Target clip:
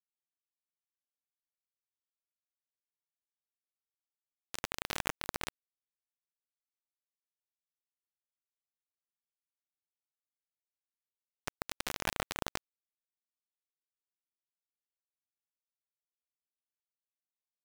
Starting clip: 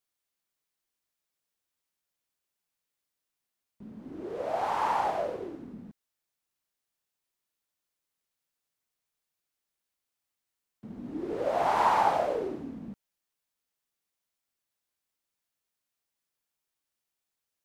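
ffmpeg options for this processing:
-af "highpass=f=320:w=0.5412,highpass=f=320:w=1.3066,equalizer=f=450:t=q:w=4:g=5,equalizer=f=1500:t=q:w=4:g=4,equalizer=f=3400:t=q:w=4:g=5,lowpass=f=6400:w=0.5412,lowpass=f=6400:w=1.3066,areverse,acompressor=threshold=0.01:ratio=12,areverse,acrusher=bits=3:dc=4:mix=0:aa=0.000001,volume=3.76"

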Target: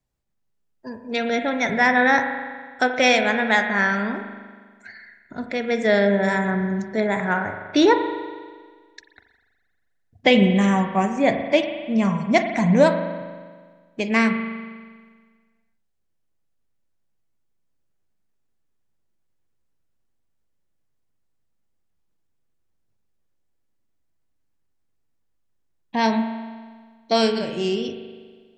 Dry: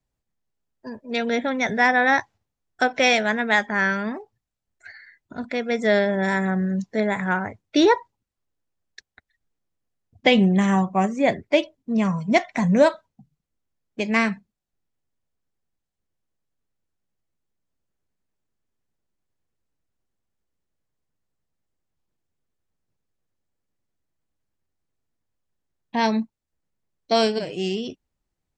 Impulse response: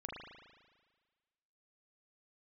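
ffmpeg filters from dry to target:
-filter_complex "[0:a]asplit=2[s0][s1];[1:a]atrim=start_sample=2205,asetrate=41013,aresample=44100[s2];[s1][s2]afir=irnorm=-1:irlink=0,volume=0.944[s3];[s0][s3]amix=inputs=2:normalize=0,volume=0.708"

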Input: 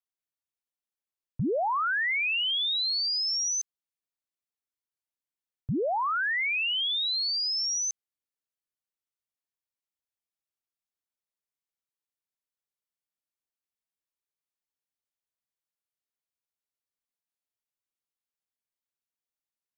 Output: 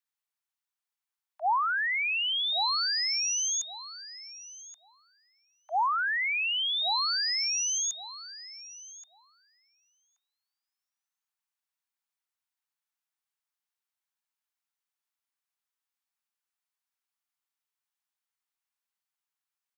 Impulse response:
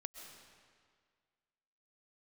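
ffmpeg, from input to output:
-filter_complex "[0:a]highpass=f=240:w=0.5412,highpass=f=240:w=1.3066,equalizer=f=870:t=o:w=2.6:g=2.5,acrossover=split=410[s0][s1];[s1]acompressor=threshold=0.0355:ratio=6[s2];[s0][s2]amix=inputs=2:normalize=0,afreqshift=480,asplit=2[s3][s4];[s4]adelay=1127,lowpass=f=1500:p=1,volume=0.562,asplit=2[s5][s6];[s6]adelay=1127,lowpass=f=1500:p=1,volume=0.19,asplit=2[s7][s8];[s8]adelay=1127,lowpass=f=1500:p=1,volume=0.19[s9];[s5][s7][s9]amix=inputs=3:normalize=0[s10];[s3][s10]amix=inputs=2:normalize=0,volume=1.19"

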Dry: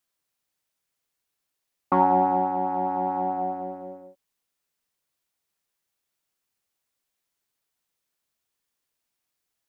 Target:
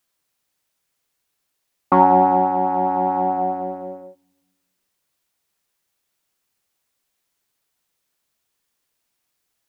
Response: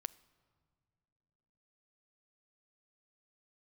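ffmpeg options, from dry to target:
-filter_complex "[0:a]asplit=2[s0][s1];[1:a]atrim=start_sample=2205,asetrate=70560,aresample=44100[s2];[s1][s2]afir=irnorm=-1:irlink=0,volume=1.33[s3];[s0][s3]amix=inputs=2:normalize=0,volume=1.33"

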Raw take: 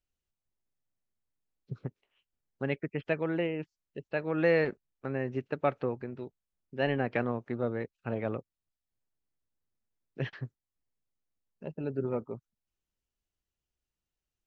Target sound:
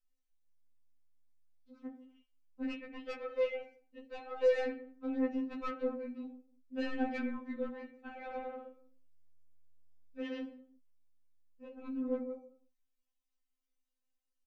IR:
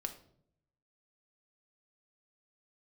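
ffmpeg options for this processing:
-filter_complex "[0:a]asplit=3[s0][s1][s2];[s0]afade=t=out:st=8.27:d=0.02[s3];[s1]aecho=1:1:110|192.5|254.4|300.8|335.6:0.631|0.398|0.251|0.158|0.1,afade=t=in:st=8.27:d=0.02,afade=t=out:st=10.42:d=0.02[s4];[s2]afade=t=in:st=10.42:d=0.02[s5];[s3][s4][s5]amix=inputs=3:normalize=0[s6];[1:a]atrim=start_sample=2205,afade=t=out:st=0.4:d=0.01,atrim=end_sample=18081[s7];[s6][s7]afir=irnorm=-1:irlink=0,asoftclip=type=tanh:threshold=0.0447,afftfilt=real='re*3.46*eq(mod(b,12),0)':imag='im*3.46*eq(mod(b,12),0)':win_size=2048:overlap=0.75"

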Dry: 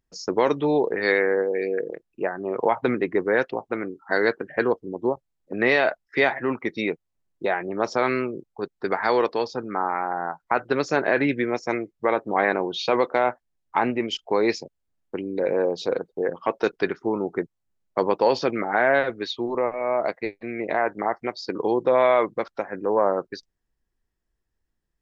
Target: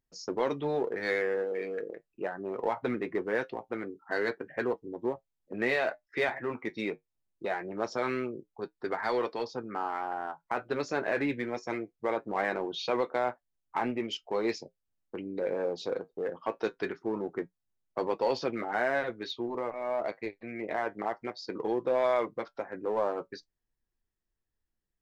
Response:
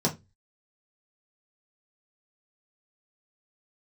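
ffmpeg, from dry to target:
-filter_complex "[0:a]asplit=2[s0][s1];[s1]asoftclip=type=hard:threshold=0.0794,volume=0.447[s2];[s0][s2]amix=inputs=2:normalize=0,flanger=delay=7.5:depth=2.3:regen=-59:speed=0.22:shape=triangular,volume=0.473"

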